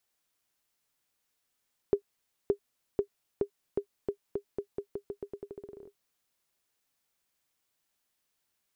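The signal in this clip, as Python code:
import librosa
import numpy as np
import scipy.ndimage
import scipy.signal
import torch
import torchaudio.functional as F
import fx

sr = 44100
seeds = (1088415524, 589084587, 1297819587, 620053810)

y = fx.bouncing_ball(sr, first_gap_s=0.57, ratio=0.86, hz=404.0, decay_ms=89.0, level_db=-14.0)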